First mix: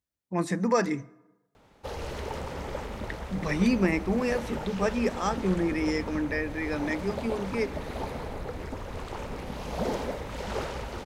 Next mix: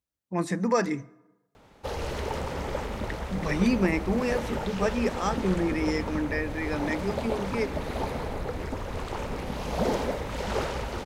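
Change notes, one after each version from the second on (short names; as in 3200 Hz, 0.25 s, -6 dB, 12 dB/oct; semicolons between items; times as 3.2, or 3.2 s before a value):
background +3.5 dB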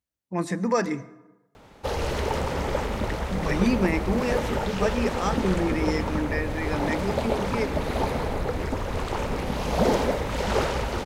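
speech: send +7.5 dB; background +5.0 dB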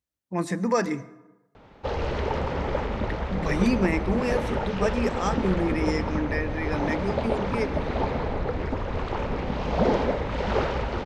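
background: add air absorption 180 m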